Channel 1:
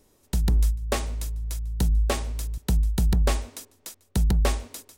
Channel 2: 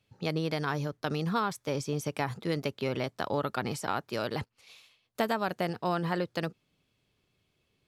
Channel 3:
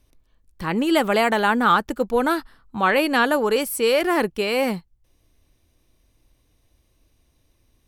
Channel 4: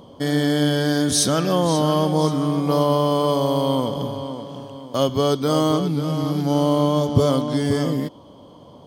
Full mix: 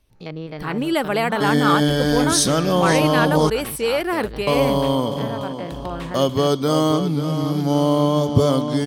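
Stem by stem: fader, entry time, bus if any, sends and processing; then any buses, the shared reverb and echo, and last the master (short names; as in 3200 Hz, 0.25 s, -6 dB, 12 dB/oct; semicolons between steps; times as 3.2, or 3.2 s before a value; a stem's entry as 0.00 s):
-16.5 dB, 1.55 s, no send, band shelf 2000 Hz +10.5 dB 2.3 oct
0.0 dB, 0.00 s, no send, stepped spectrum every 50 ms; treble ducked by the level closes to 2900 Hz, closed at -27.5 dBFS
-2.0 dB, 0.00 s, no send, notch 6900 Hz, Q 5.5; vibrato 12 Hz 41 cents
+1.0 dB, 1.20 s, muted 3.5–4.47, no send, dry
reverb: off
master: dry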